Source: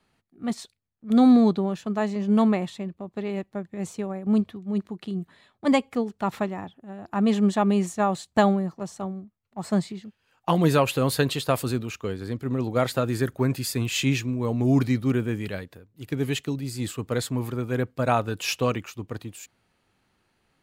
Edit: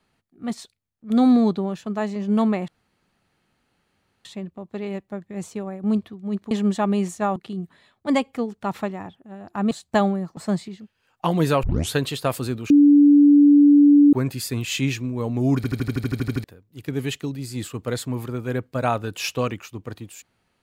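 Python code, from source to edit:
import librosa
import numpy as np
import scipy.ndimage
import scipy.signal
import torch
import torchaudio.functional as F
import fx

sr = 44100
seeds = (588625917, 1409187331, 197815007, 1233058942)

y = fx.edit(x, sr, fx.insert_room_tone(at_s=2.68, length_s=1.57),
    fx.move(start_s=7.29, length_s=0.85, to_s=4.94),
    fx.cut(start_s=8.8, length_s=0.81),
    fx.tape_start(start_s=10.87, length_s=0.31),
    fx.bleep(start_s=11.94, length_s=1.43, hz=289.0, db=-9.0),
    fx.stutter_over(start_s=14.8, slice_s=0.08, count=11), tone=tone)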